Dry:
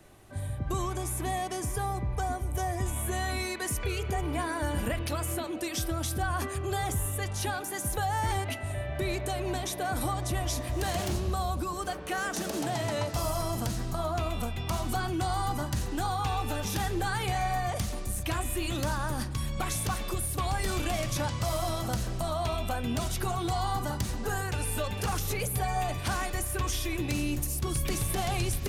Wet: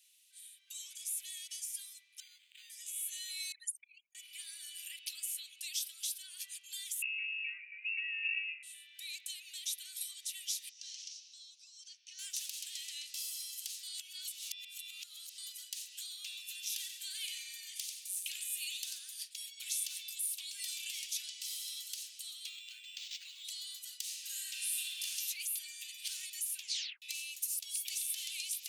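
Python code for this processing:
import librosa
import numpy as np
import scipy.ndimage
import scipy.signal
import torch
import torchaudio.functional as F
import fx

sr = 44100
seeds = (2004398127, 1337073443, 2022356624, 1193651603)

y = fx.resample_linear(x, sr, factor=8, at=(2.2, 2.7))
y = fx.envelope_sharpen(y, sr, power=3.0, at=(3.52, 4.15))
y = fx.freq_invert(y, sr, carrier_hz=2700, at=(7.02, 8.63))
y = fx.ladder_lowpass(y, sr, hz=6200.0, resonance_pct=70, at=(10.69, 12.19))
y = fx.echo_single(y, sr, ms=92, db=-6.5, at=(16.8, 18.99))
y = fx.resample_linear(y, sr, factor=4, at=(22.49, 23.45))
y = fx.reverb_throw(y, sr, start_s=24.0, length_s=1.06, rt60_s=2.4, drr_db=-3.0)
y = fx.edit(y, sr, fx.reverse_span(start_s=13.83, length_s=1.55),
    fx.tape_stop(start_s=26.6, length_s=0.42), tone=tone)
y = scipy.signal.sosfilt(scipy.signal.butter(6, 2700.0, 'highpass', fs=sr, output='sos'), y)
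y = y * librosa.db_to_amplitude(-1.5)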